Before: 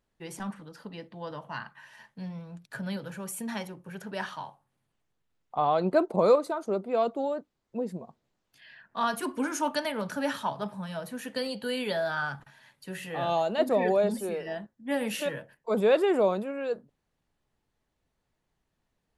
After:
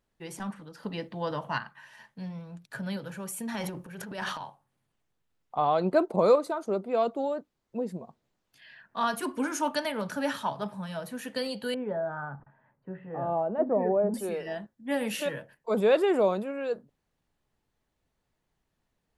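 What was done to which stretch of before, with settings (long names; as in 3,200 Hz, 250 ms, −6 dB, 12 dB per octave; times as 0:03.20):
0:00.83–0:01.58: clip gain +6.5 dB
0:03.54–0:04.43: transient designer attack −8 dB, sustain +10 dB
0:11.74–0:14.14: Bessel low-pass filter 920 Hz, order 4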